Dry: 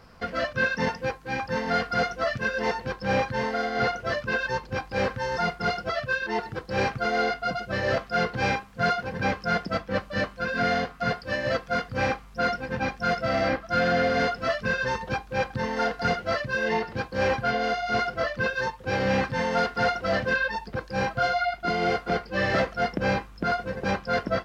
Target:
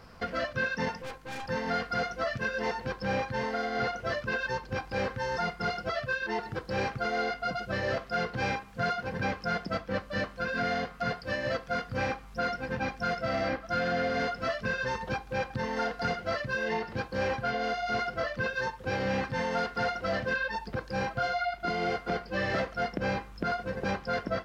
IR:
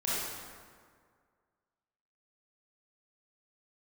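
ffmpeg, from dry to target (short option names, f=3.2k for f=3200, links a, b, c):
-filter_complex "[0:a]asettb=1/sr,asplit=3[a][b][c];[a]atrim=end=1.024[d];[b]atrim=start=1.02:end=1.48,asetpts=PTS-STARTPTS,afade=t=in:d=0.004:c=qsin,afade=t=out:st=0.456:d=0.004:c=qsin,aeval=exprs='(tanh(70.8*val(0)+0.65)-tanh(0.65))/70.8':c=same[e];[c]atrim=start=1.476[f];[d][e]acrossfade=d=0.004:c1=hsin:c2=qsin[g];[g][f]acrossfade=d=0.004:c1=qsin:c2=hsin,acompressor=threshold=-32dB:ratio=2,asplit=2[h][i];[1:a]atrim=start_sample=2205,atrim=end_sample=6615[j];[i][j]afir=irnorm=-1:irlink=0,volume=-27.5dB[k];[h][k]amix=inputs=2:normalize=0"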